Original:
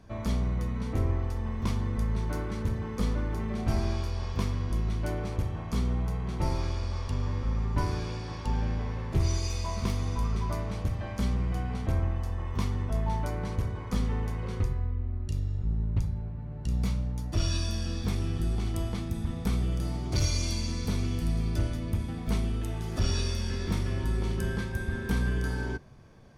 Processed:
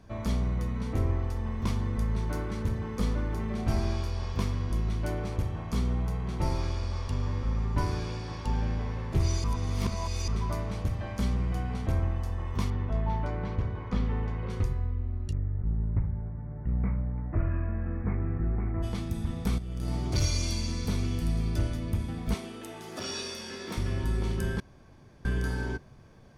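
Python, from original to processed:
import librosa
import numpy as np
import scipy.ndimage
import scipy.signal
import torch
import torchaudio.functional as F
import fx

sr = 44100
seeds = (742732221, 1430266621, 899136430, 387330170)

y = fx.lowpass(x, sr, hz=3300.0, slope=12, at=(12.7, 14.5))
y = fx.steep_lowpass(y, sr, hz=2200.0, slope=72, at=(15.31, 18.82), fade=0.02)
y = fx.over_compress(y, sr, threshold_db=-31.0, ratio=-0.5, at=(19.58, 20.12))
y = fx.highpass(y, sr, hz=310.0, slope=12, at=(22.34, 23.77))
y = fx.edit(y, sr, fx.reverse_span(start_s=9.44, length_s=0.84),
    fx.room_tone_fill(start_s=24.6, length_s=0.65), tone=tone)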